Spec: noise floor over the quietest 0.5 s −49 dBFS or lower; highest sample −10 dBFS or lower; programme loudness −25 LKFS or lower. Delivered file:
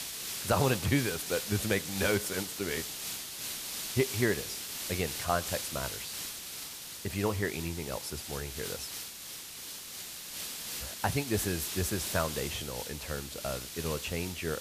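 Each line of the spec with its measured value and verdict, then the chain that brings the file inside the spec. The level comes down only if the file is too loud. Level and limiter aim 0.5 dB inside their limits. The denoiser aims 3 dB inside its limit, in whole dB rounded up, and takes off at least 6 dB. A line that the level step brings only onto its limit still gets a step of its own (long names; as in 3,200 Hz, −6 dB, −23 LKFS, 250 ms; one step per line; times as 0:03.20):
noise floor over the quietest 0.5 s −44 dBFS: out of spec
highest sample −13.0 dBFS: in spec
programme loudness −33.0 LKFS: in spec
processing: broadband denoise 8 dB, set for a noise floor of −44 dBFS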